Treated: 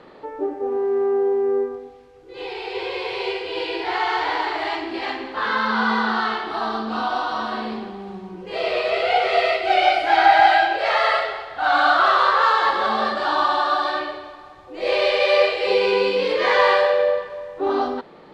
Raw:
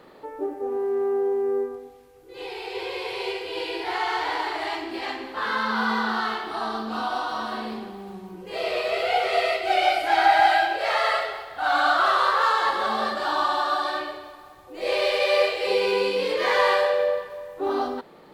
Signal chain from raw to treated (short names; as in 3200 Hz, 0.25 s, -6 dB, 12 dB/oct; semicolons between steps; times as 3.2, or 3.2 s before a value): LPF 5000 Hz 12 dB/oct; gain +4 dB